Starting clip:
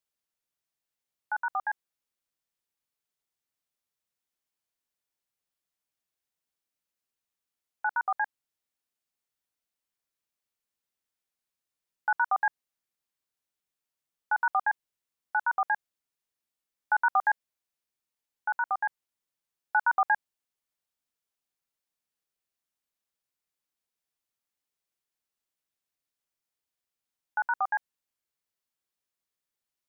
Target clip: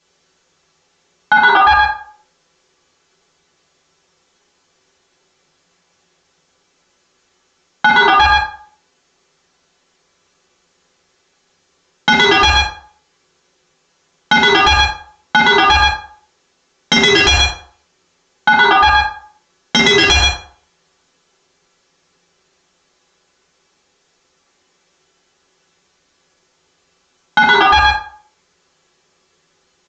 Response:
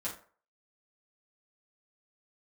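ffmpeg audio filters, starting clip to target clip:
-filter_complex "[0:a]equalizer=f=370:w=5.3:g=11,aresample=16000,aeval=exprs='0.237*sin(PI/2*3.98*val(0)/0.237)':c=same,aresample=44100,aecho=1:1:122:0.335[a];[1:a]atrim=start_sample=2205,asetrate=37485,aresample=44100[b];[a][b]afir=irnorm=-1:irlink=0,alimiter=level_in=14.5dB:limit=-1dB:release=50:level=0:latency=1,volume=-1dB"

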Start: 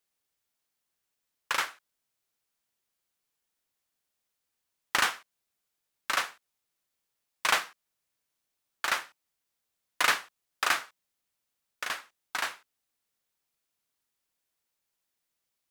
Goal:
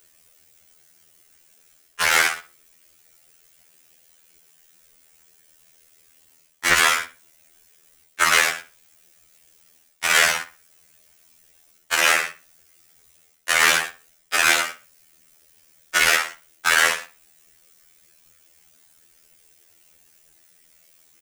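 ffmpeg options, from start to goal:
-filter_complex "[0:a]equalizer=f=250:t=o:w=1:g=-5,equalizer=f=1k:t=o:w=1:g=-10,equalizer=f=4k:t=o:w=1:g=-7,equalizer=f=16k:t=o:w=1:g=-10,areverse,acompressor=threshold=-38dB:ratio=16,areverse,atempo=0.74,highshelf=f=5.3k:g=6,bandreject=f=50:t=h:w=6,bandreject=f=100:t=h:w=6,bandreject=f=150:t=h:w=6,bandreject=f=200:t=h:w=6,bandreject=f=250:t=h:w=6,tremolo=f=80:d=0.824,asplit=2[a][b];[b]adelay=61,lowpass=f=4.3k:p=1,volume=-14.5dB,asplit=2[c][d];[d]adelay=61,lowpass=f=4.3k:p=1,volume=0.32,asplit=2[e][f];[f]adelay=61,lowpass=f=4.3k:p=1,volume=0.32[g];[c][e][g]amix=inputs=3:normalize=0[h];[a][h]amix=inputs=2:normalize=0,alimiter=level_in=35dB:limit=-1dB:release=50:level=0:latency=1,afftfilt=real='re*2*eq(mod(b,4),0)':imag='im*2*eq(mod(b,4),0)':win_size=2048:overlap=0.75,volume=-1dB"

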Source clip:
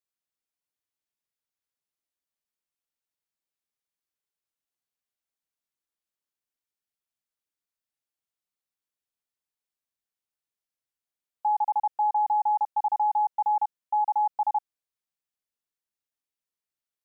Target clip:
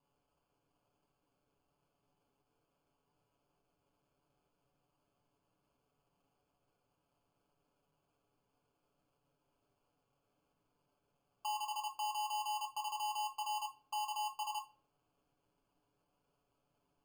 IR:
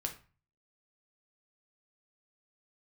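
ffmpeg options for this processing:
-filter_complex "[0:a]aderivative,acrusher=samples=23:mix=1:aa=0.000001,acompressor=threshold=-44dB:ratio=6,asplit=2[a][b];[1:a]atrim=start_sample=2205,adelay=7[c];[b][c]afir=irnorm=-1:irlink=0,volume=0dB[d];[a][d]amix=inputs=2:normalize=0,volume=3.5dB"

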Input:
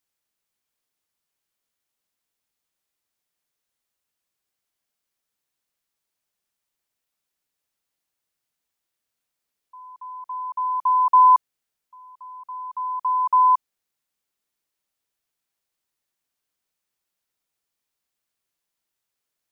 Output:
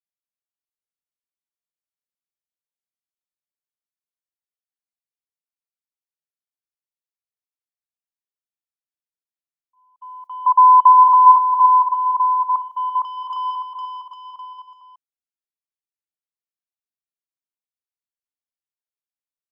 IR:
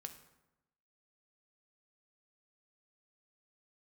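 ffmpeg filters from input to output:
-filter_complex "[0:a]agate=range=-22dB:threshold=-40dB:ratio=16:detection=peak,acompressor=threshold=-22dB:ratio=6,asoftclip=type=tanh:threshold=-22dB,asettb=1/sr,asplit=3[a][b][c];[a]atrim=end=10.464[d];[b]atrim=start=10.46:end=12.56,asetpts=PTS-STARTPTS,afade=t=in:d=0.004:c=qsin,afade=t=out:st=2.096:d=0.004:c=qsin,lowpass=f=990:t=q:w=9[e];[c]atrim=start=12.556[f];[d][e]acrossfade=d=0.004:c1=hsin:c2=qsin[g];[g][f]acrossfade=d=0.004:c1=qsin:c2=hsin,aecho=1:1:460|805|1064|1258|1403:0.631|0.398|0.251|0.158|0.1"

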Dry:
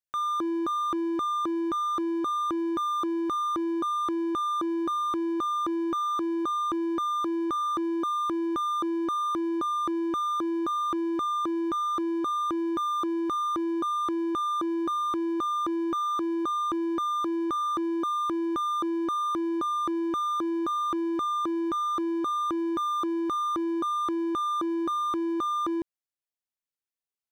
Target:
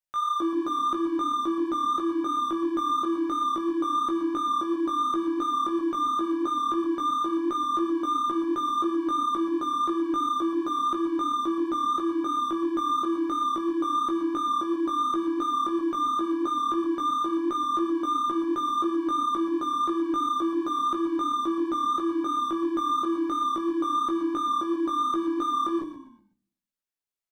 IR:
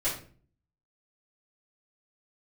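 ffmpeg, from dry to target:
-filter_complex "[0:a]flanger=delay=15.5:depth=3.7:speed=2.9,asplit=5[a][b][c][d][e];[b]adelay=124,afreqshift=-34,volume=-10dB[f];[c]adelay=248,afreqshift=-68,volume=-18.9dB[g];[d]adelay=372,afreqshift=-102,volume=-27.7dB[h];[e]adelay=496,afreqshift=-136,volume=-36.6dB[i];[a][f][g][h][i]amix=inputs=5:normalize=0,asplit=2[j][k];[1:a]atrim=start_sample=2205[l];[k][l]afir=irnorm=-1:irlink=0,volume=-15dB[m];[j][m]amix=inputs=2:normalize=0,volume=1dB"

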